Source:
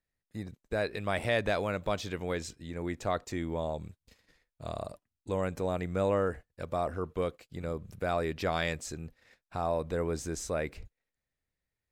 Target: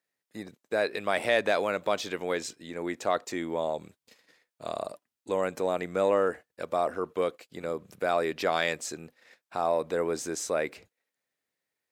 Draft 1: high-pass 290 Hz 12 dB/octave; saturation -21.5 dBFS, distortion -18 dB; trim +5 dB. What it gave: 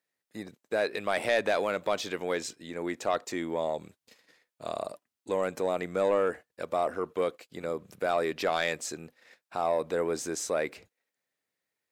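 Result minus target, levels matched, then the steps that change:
saturation: distortion +13 dB
change: saturation -13.5 dBFS, distortion -31 dB

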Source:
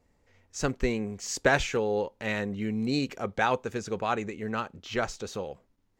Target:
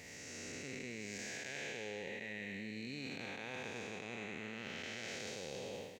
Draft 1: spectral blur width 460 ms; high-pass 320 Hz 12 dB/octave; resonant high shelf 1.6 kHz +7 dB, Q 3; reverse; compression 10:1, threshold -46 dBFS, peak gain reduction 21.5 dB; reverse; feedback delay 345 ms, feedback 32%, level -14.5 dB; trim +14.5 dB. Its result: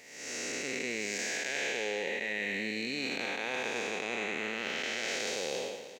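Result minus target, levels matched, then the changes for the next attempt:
125 Hz band -11.0 dB; compression: peak gain reduction -10.5 dB
change: high-pass 110 Hz 12 dB/octave; change: compression 10:1, threshold -57.5 dBFS, peak gain reduction 32 dB

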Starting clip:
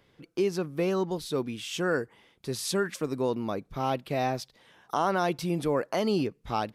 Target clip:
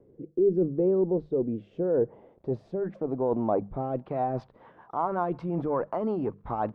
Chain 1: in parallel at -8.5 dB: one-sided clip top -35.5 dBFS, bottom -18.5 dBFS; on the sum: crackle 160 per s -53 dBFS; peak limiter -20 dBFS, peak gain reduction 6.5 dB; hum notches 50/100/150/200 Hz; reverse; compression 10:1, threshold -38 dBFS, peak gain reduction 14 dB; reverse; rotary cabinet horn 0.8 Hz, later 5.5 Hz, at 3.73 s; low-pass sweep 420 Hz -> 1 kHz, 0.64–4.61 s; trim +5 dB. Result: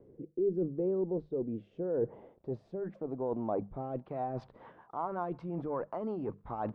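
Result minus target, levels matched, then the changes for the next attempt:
compression: peak gain reduction +7.5 dB
change: compression 10:1, threshold -29.5 dBFS, peak gain reduction 6.5 dB

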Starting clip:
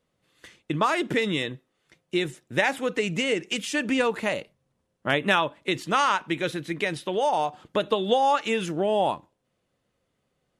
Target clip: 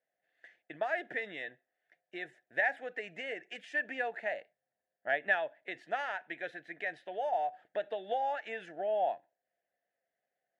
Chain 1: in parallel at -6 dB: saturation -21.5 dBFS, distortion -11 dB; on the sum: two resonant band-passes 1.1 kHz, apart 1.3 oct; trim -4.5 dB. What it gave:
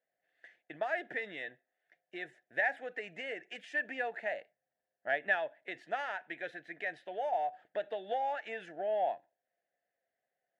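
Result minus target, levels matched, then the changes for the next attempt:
saturation: distortion +12 dB
change: saturation -11.5 dBFS, distortion -23 dB

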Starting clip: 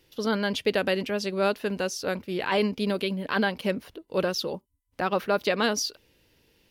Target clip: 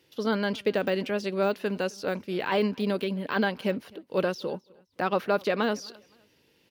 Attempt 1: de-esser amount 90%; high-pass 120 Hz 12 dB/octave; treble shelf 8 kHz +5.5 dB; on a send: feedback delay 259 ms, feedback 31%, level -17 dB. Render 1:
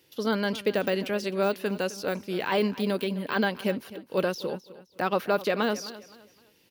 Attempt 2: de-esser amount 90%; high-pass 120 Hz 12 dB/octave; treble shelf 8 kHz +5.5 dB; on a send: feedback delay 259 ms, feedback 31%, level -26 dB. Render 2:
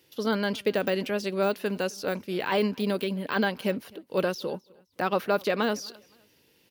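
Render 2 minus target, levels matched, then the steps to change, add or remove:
8 kHz band +4.0 dB
change: treble shelf 8 kHz -5 dB

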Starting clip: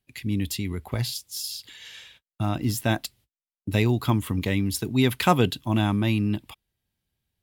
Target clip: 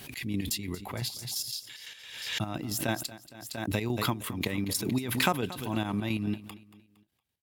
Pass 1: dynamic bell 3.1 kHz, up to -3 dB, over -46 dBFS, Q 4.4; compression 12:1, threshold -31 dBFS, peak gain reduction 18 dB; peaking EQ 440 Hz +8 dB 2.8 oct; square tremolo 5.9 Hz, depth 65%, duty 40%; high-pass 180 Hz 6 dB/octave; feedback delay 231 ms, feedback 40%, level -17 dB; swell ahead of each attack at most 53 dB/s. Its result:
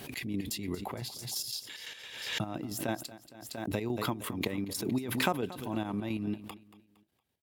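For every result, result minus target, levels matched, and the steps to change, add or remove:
compression: peak gain reduction +8.5 dB; 500 Hz band +2.5 dB
change: compression 12:1, threshold -21.5 dBFS, peak gain reduction 9.5 dB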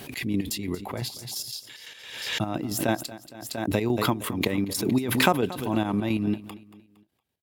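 500 Hz band +3.0 dB
remove: peaking EQ 440 Hz +8 dB 2.8 oct

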